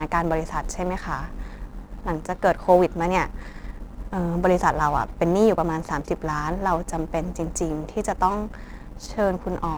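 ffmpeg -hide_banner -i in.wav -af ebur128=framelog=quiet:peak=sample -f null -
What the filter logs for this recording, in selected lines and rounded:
Integrated loudness:
  I:         -24.1 LUFS
  Threshold: -34.7 LUFS
Loudness range:
  LRA:         4.1 LU
  Threshold: -44.1 LUFS
  LRA low:   -26.6 LUFS
  LRA high:  -22.5 LUFS
Sample peak:
  Peak:       -4.6 dBFS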